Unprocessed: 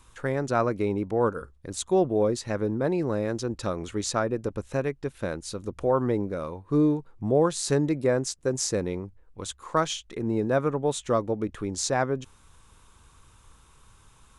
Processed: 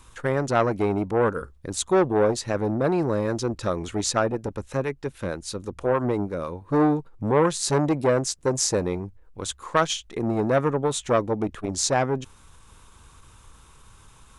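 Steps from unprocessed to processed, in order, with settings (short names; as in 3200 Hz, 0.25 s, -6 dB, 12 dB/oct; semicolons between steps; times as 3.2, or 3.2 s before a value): 4.32–6.62 harmonic tremolo 6.3 Hz, depth 50%, crossover 520 Hz; core saturation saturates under 870 Hz; gain +5 dB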